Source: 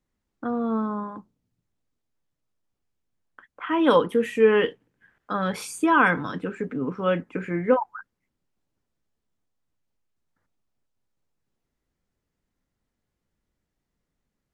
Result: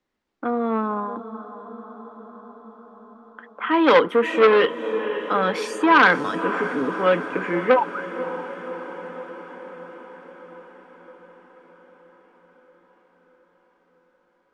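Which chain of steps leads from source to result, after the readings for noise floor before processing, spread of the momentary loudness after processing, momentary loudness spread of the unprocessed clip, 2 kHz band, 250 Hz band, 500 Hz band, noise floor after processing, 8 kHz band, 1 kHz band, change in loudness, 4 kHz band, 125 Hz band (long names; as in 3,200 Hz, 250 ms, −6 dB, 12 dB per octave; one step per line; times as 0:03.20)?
−82 dBFS, 22 LU, 14 LU, +6.0 dB, +1.5 dB, +4.0 dB, −65 dBFS, can't be measured, +5.5 dB, +3.0 dB, +6.5 dB, −2.5 dB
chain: three-way crossover with the lows and the highs turned down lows −15 dB, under 250 Hz, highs −17 dB, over 5,500 Hz
feedback delay with all-pass diffusion 558 ms, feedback 67%, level −13 dB
saturating transformer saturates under 1,300 Hz
level +6.5 dB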